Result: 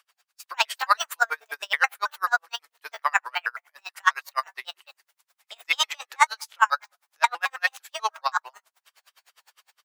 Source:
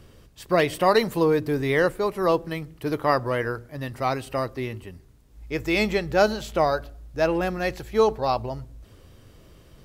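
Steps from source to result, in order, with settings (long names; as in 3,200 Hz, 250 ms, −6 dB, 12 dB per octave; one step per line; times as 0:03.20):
pitch shifter gated in a rhythm +6.5 semitones, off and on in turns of 108 ms
high-pass filter 1,000 Hz 24 dB per octave
dynamic equaliser 1,400 Hz, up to +5 dB, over −41 dBFS, Q 1.8
automatic gain control gain up to 10 dB
tremolo with a sine in dB 9.8 Hz, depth 38 dB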